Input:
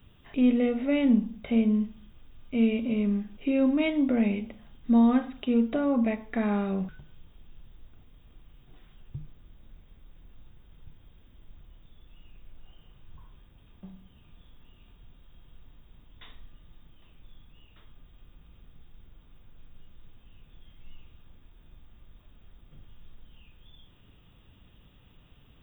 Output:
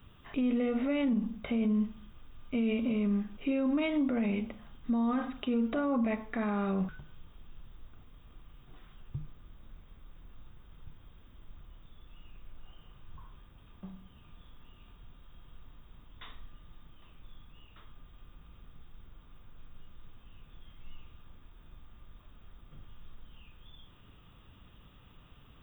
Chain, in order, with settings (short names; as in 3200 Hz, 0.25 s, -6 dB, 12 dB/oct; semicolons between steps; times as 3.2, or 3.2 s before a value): bell 1200 Hz +7 dB 0.66 oct; limiter -23 dBFS, peak gain reduction 11.5 dB